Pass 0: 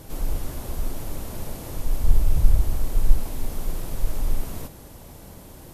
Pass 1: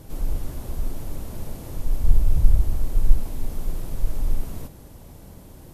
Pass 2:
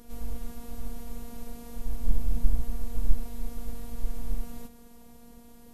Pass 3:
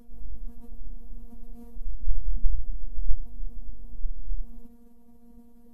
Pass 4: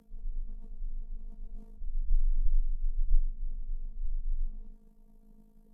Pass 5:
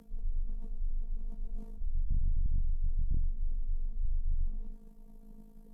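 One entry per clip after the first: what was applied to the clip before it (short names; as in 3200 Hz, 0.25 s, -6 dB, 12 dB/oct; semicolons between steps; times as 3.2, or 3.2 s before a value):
low shelf 390 Hz +6 dB; gain -5 dB
robotiser 236 Hz; gain -3.5 dB
spectral contrast raised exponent 1.6; gain +3 dB
treble ducked by the level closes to 350 Hz, closed at -14 dBFS; AM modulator 53 Hz, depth 50%; frequency shift -23 Hz; gain -5.5 dB
soft clip -30 dBFS, distortion -5 dB; gain +5.5 dB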